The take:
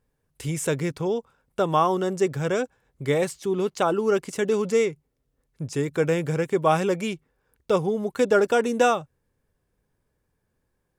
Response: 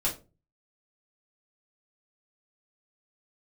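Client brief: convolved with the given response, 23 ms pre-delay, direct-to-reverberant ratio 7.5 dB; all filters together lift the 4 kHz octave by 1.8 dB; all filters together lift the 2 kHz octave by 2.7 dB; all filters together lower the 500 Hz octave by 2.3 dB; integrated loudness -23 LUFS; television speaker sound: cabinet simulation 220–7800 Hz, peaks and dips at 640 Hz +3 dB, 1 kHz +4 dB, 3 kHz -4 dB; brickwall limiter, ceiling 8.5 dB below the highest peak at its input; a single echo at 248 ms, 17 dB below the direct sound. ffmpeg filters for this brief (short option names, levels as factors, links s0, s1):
-filter_complex "[0:a]equalizer=f=500:t=o:g=-4,equalizer=f=2000:t=o:g=3.5,equalizer=f=4000:t=o:g=3.5,alimiter=limit=0.141:level=0:latency=1,aecho=1:1:248:0.141,asplit=2[s0][s1];[1:a]atrim=start_sample=2205,adelay=23[s2];[s1][s2]afir=irnorm=-1:irlink=0,volume=0.188[s3];[s0][s3]amix=inputs=2:normalize=0,highpass=f=220:w=0.5412,highpass=f=220:w=1.3066,equalizer=f=640:t=q:w=4:g=3,equalizer=f=1000:t=q:w=4:g=4,equalizer=f=3000:t=q:w=4:g=-4,lowpass=f=7800:w=0.5412,lowpass=f=7800:w=1.3066,volume=1.68"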